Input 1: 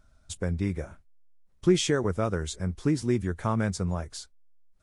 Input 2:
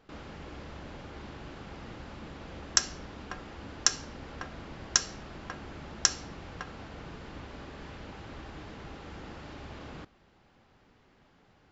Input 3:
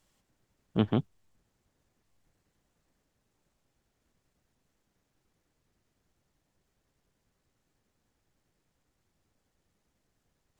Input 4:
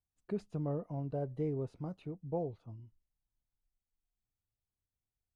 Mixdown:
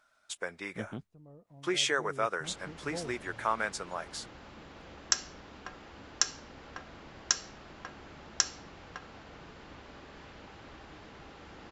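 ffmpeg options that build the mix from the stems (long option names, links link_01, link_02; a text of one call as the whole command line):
ffmpeg -i stem1.wav -i stem2.wav -i stem3.wav -i stem4.wav -filter_complex "[0:a]highpass=530,equalizer=frequency=1800:width_type=o:width=2.7:gain=9,volume=-4.5dB[link_01];[1:a]lowshelf=frequency=280:gain=-6.5,adelay=2350,volume=-3dB[link_02];[2:a]volume=-14.5dB,asplit=2[link_03][link_04];[3:a]adelay=600,volume=-4dB[link_05];[link_04]apad=whole_len=262765[link_06];[link_05][link_06]sidechaincompress=threshold=-52dB:ratio=8:attack=31:release=1460[link_07];[link_01][link_02][link_03][link_07]amix=inputs=4:normalize=0" out.wav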